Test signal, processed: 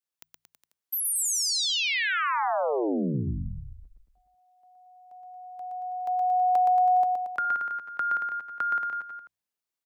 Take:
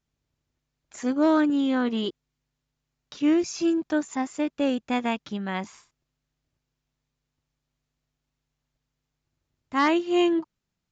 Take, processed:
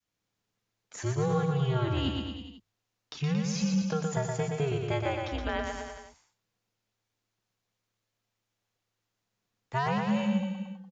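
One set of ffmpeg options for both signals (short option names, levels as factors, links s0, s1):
-filter_complex "[0:a]highpass=f=230:w=0.5412,highpass=f=230:w=1.3066,bandreject=f=60:t=h:w=6,bandreject=f=120:t=h:w=6,bandreject=f=180:t=h:w=6,bandreject=f=240:t=h:w=6,bandreject=f=300:t=h:w=6,adynamicequalizer=threshold=0.0251:dfrequency=740:dqfactor=0.86:tfrequency=740:tqfactor=0.86:attack=5:release=100:ratio=0.375:range=2:mode=boostabove:tftype=bell,acompressor=threshold=0.0447:ratio=6,afreqshift=-140,asplit=2[s0][s1];[s1]aecho=0:1:120|228|325.2|412.7|491.4:0.631|0.398|0.251|0.158|0.1[s2];[s0][s2]amix=inputs=2:normalize=0"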